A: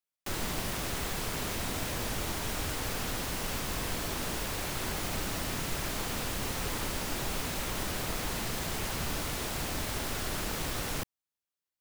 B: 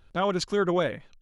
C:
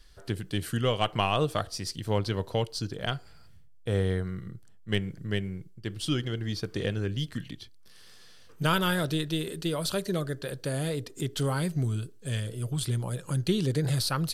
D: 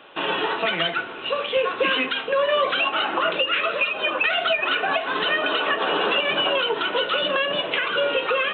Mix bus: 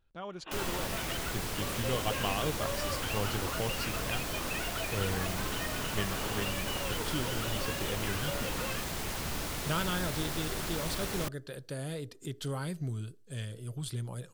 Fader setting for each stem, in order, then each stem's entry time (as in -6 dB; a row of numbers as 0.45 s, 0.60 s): -2.0 dB, -16.0 dB, -7.5 dB, -18.0 dB; 0.25 s, 0.00 s, 1.05 s, 0.30 s